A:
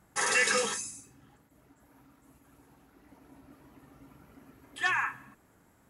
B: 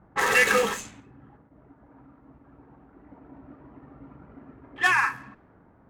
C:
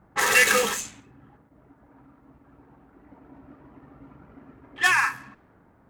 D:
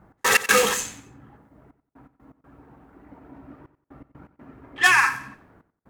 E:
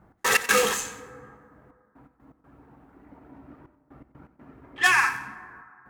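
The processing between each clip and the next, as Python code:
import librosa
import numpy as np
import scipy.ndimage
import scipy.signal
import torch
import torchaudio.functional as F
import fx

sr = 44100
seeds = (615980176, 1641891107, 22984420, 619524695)

y1 = scipy.ndimage.median_filter(x, 9, mode='constant')
y1 = fx.env_lowpass(y1, sr, base_hz=1200.0, full_db=-31.0)
y1 = y1 * librosa.db_to_amplitude(8.0)
y2 = fx.high_shelf(y1, sr, hz=2900.0, db=10.0)
y2 = y2 * librosa.db_to_amplitude(-1.5)
y3 = fx.step_gate(y2, sr, bpm=123, pattern='x.x.xxxxxxxxxx..', floor_db=-60.0, edge_ms=4.5)
y3 = fx.echo_feedback(y3, sr, ms=91, feedback_pct=28, wet_db=-15)
y3 = y3 * librosa.db_to_amplitude(3.5)
y4 = fx.rev_plate(y3, sr, seeds[0], rt60_s=2.5, hf_ratio=0.35, predelay_ms=0, drr_db=14.0)
y4 = y4 * librosa.db_to_amplitude(-3.0)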